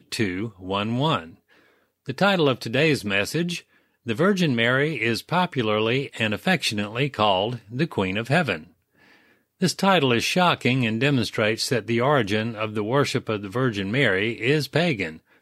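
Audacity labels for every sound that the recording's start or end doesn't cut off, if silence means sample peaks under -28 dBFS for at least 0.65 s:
2.080000	8.560000	sound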